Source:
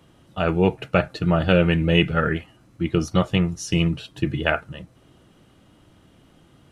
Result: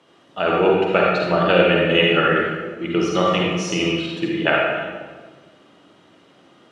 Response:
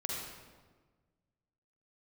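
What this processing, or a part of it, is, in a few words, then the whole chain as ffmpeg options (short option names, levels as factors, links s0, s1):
supermarket ceiling speaker: -filter_complex "[0:a]highpass=330,lowpass=6000[s0];[1:a]atrim=start_sample=2205[s1];[s0][s1]afir=irnorm=-1:irlink=0,volume=1.58"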